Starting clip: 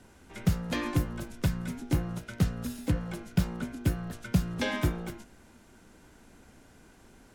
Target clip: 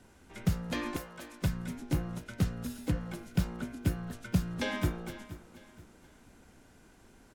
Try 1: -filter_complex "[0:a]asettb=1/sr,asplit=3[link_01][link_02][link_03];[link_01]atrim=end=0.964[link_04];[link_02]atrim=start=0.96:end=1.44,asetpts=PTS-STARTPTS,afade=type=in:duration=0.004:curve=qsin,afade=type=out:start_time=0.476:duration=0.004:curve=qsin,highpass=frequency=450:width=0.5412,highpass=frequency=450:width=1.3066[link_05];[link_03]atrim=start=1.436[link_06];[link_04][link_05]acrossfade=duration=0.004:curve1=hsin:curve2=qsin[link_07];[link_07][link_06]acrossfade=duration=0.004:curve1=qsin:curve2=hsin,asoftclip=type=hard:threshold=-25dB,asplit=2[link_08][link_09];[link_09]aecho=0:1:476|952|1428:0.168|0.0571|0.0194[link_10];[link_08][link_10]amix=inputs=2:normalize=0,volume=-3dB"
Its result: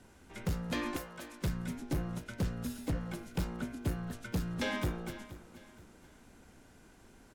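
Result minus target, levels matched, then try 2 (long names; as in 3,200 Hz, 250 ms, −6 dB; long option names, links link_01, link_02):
hard clipping: distortion +31 dB
-filter_complex "[0:a]asettb=1/sr,asplit=3[link_01][link_02][link_03];[link_01]atrim=end=0.964[link_04];[link_02]atrim=start=0.96:end=1.44,asetpts=PTS-STARTPTS,afade=type=in:duration=0.004:curve=qsin,afade=type=out:start_time=0.476:duration=0.004:curve=qsin,highpass=frequency=450:width=0.5412,highpass=frequency=450:width=1.3066[link_05];[link_03]atrim=start=1.436[link_06];[link_04][link_05]acrossfade=duration=0.004:curve1=hsin:curve2=qsin[link_07];[link_07][link_06]acrossfade=duration=0.004:curve1=qsin:curve2=hsin,asoftclip=type=hard:threshold=-13.5dB,asplit=2[link_08][link_09];[link_09]aecho=0:1:476|952|1428:0.168|0.0571|0.0194[link_10];[link_08][link_10]amix=inputs=2:normalize=0,volume=-3dB"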